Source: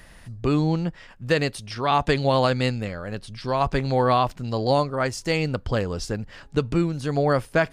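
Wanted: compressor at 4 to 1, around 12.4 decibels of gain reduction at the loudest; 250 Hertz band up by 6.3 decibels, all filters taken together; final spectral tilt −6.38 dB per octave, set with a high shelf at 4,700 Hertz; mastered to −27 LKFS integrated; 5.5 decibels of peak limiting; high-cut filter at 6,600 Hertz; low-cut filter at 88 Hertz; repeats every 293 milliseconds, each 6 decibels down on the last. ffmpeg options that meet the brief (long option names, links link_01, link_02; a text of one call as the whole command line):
ffmpeg -i in.wav -af "highpass=88,lowpass=6600,equalizer=frequency=250:width_type=o:gain=8.5,highshelf=frequency=4700:gain=-5,acompressor=threshold=-28dB:ratio=4,alimiter=limit=-21.5dB:level=0:latency=1,aecho=1:1:293|586|879|1172|1465|1758:0.501|0.251|0.125|0.0626|0.0313|0.0157,volume=4.5dB" out.wav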